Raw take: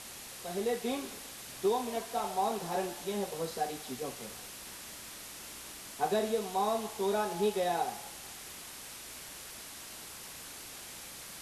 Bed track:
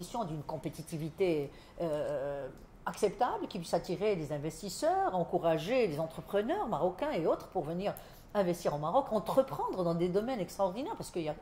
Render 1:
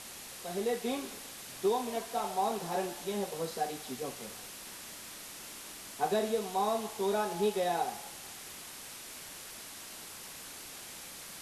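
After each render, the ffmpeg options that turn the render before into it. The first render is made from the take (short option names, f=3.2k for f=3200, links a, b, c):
-af "bandreject=f=60:t=h:w=4,bandreject=f=120:t=h:w=4"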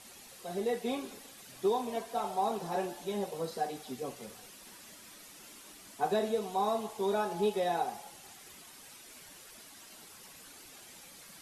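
-af "afftdn=nr=9:nf=-47"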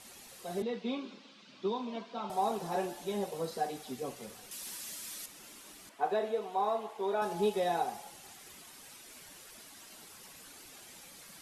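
-filter_complex "[0:a]asettb=1/sr,asplit=3[a][b][c];[a]atrim=end=0.624[d];[b]atrim=start=0.62:end=2.3,asetpts=PTS-STARTPTS,afade=t=in:d=0.004:c=qsin,afade=t=out:st=1.676:d=0.004:c=qsin,highpass=f=180:w=0.5412,highpass=f=180:w=1.3066,equalizer=f=200:t=q:w=4:g=5,equalizer=f=430:t=q:w=4:g=-7,equalizer=f=740:t=q:w=4:g=-10,equalizer=f=1.8k:t=q:w=4:g=-8,lowpass=f=4.6k:w=0.5412,lowpass=f=4.6k:w=1.3066[e];[c]atrim=start=2.296[f];[d][e]acrossfade=d=0.004:c1=hsin:c2=qsin[g];[g][f]acrossfade=d=0.004:c1=qsin:c2=hsin,asettb=1/sr,asplit=3[h][i][j];[h]atrim=end=4.514[k];[i]atrim=start=4.51:end=5.26,asetpts=PTS-STARTPTS,afade=t=in:d=0.004:c=qsin,afade=t=out:st=0.746:d=0.004:c=qsin,highshelf=f=2.8k:g=11.5[l];[j]atrim=start=5.256[m];[k][l]acrossfade=d=0.004:c1=hsin:c2=qsin[n];[n][m]acrossfade=d=0.004:c1=qsin:c2=hsin,asettb=1/sr,asplit=3[o][p][q];[o]atrim=end=5.894[r];[p]atrim=start=5.89:end=7.22,asetpts=PTS-STARTPTS,afade=t=in:d=0.004:c=qsin,afade=t=out:st=1.326:d=0.004:c=qsin,bass=f=250:g=-14,treble=f=4k:g=-13[s];[q]atrim=start=7.216[t];[r][s]acrossfade=d=0.004:c1=hsin:c2=qsin[u];[u][t]acrossfade=d=0.004:c1=qsin:c2=hsin"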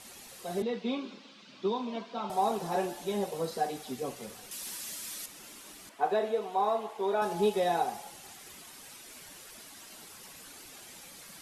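-af "volume=3dB"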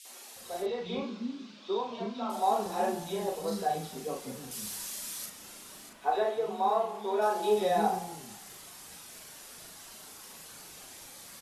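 -filter_complex "[0:a]asplit=2[a][b];[b]adelay=38,volume=-4dB[c];[a][c]amix=inputs=2:normalize=0,acrossover=split=290|2400[d][e][f];[e]adelay=50[g];[d]adelay=360[h];[h][g][f]amix=inputs=3:normalize=0"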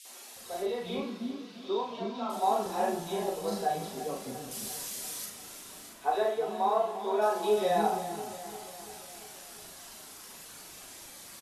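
-filter_complex "[0:a]asplit=2[a][b];[b]adelay=41,volume=-11dB[c];[a][c]amix=inputs=2:normalize=0,aecho=1:1:345|690|1035|1380|1725|2070:0.211|0.125|0.0736|0.0434|0.0256|0.0151"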